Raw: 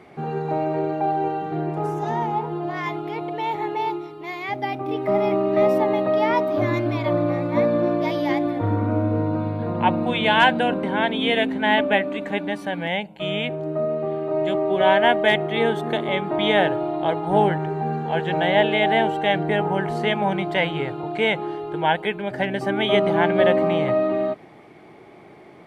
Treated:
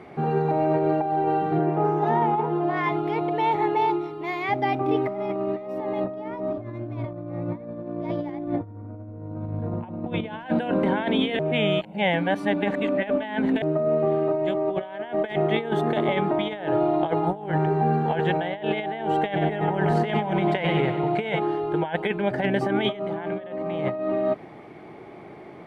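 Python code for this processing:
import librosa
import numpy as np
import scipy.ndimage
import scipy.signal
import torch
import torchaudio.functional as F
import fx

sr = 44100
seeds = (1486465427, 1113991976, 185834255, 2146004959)

y = fx.bandpass_edges(x, sr, low_hz=150.0, high_hz=fx.line((1.58, 3100.0), (2.9, 4300.0)), at=(1.58, 2.9), fade=0.02)
y = fx.tilt_eq(y, sr, slope=-2.5, at=(6.04, 10.46))
y = fx.echo_split(y, sr, split_hz=310.0, low_ms=231, high_ms=93, feedback_pct=52, wet_db=-10.5, at=(19.35, 21.38), fade=0.02)
y = fx.edit(y, sr, fx.reverse_span(start_s=11.39, length_s=2.23), tone=tone)
y = fx.high_shelf(y, sr, hz=3400.0, db=-9.0)
y = fx.over_compress(y, sr, threshold_db=-24.0, ratio=-0.5)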